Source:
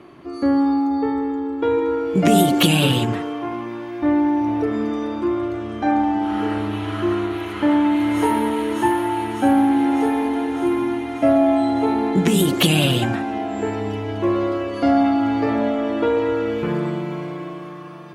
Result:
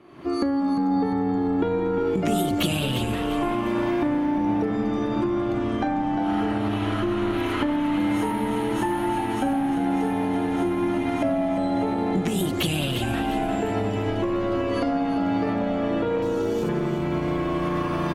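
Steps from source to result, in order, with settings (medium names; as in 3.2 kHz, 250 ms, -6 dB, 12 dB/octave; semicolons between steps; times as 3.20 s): recorder AGC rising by 53 dB/s; 16.22–16.69 s: FFT filter 810 Hz 0 dB, 2.2 kHz -9 dB, 6.1 kHz +13 dB; frequency-shifting echo 350 ms, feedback 42%, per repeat -86 Hz, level -9 dB; trim -9 dB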